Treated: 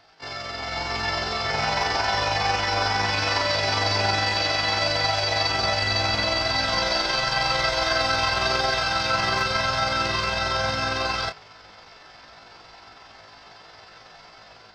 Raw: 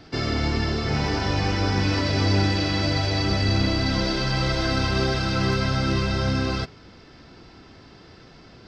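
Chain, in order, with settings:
low shelf with overshoot 470 Hz −13.5 dB, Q 1.5
automatic gain control gain up to 9.5 dB
time stretch by overlap-add 1.7×, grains 91 ms
level −4 dB

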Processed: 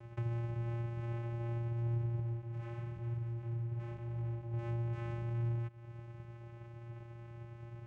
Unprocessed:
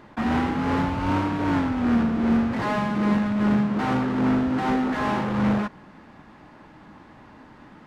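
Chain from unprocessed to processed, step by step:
downward compressor 5 to 1, threshold −37 dBFS, peak gain reduction 17.5 dB
channel vocoder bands 4, square 117 Hz
0:02.20–0:04.54: flanger 1 Hz, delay 0.8 ms, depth 7.8 ms, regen −48%
level +1.5 dB

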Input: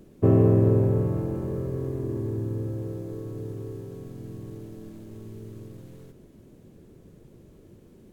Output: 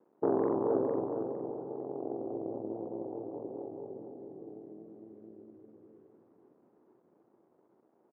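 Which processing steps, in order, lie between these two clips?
spectral envelope exaggerated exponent 1.5
source passing by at 0:03.70, 8 m/s, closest 12 metres
pitch vibrato 4.8 Hz 55 cents
centre clipping without the shift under −59.5 dBFS
harmonic generator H 6 −14 dB, 7 −28 dB, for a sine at −14.5 dBFS
flat-topped band-pass 570 Hz, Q 0.75
on a send: repeating echo 457 ms, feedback 24%, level −6.5 dB

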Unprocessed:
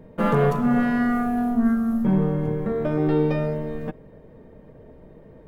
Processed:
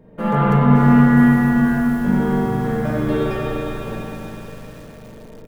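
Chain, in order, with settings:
0:01.17–0:03.35: high-shelf EQ 2,900 Hz +10.5 dB
single-tap delay 240 ms −20 dB
convolution reverb RT60 4.1 s, pre-delay 41 ms, DRR −8.5 dB
dynamic equaliser 130 Hz, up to +4 dB, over −27 dBFS, Q 1.9
feedback echo at a low word length 564 ms, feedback 55%, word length 5 bits, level −13.5 dB
level −3.5 dB

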